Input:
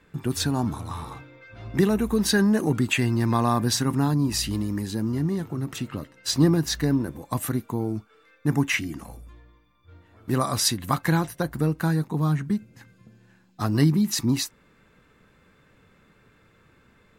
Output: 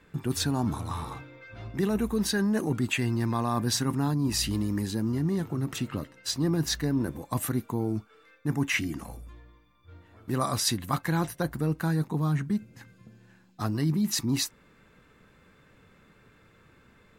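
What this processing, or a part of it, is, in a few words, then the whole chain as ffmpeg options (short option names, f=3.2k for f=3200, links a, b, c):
compression on the reversed sound: -af "areverse,acompressor=threshold=-23dB:ratio=6,areverse"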